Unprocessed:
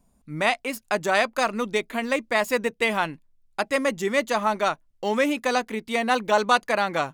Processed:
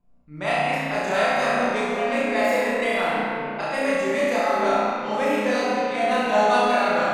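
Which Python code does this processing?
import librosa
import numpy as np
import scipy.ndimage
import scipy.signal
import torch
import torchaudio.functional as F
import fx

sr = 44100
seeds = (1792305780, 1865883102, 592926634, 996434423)

y = fx.room_flutter(x, sr, wall_m=5.7, rt60_s=0.91)
y = fx.env_lowpass(y, sr, base_hz=2700.0, full_db=-15.5)
y = fx.room_shoebox(y, sr, seeds[0], volume_m3=180.0, walls='hard', distance_m=0.87)
y = y * 10.0 ** (-9.0 / 20.0)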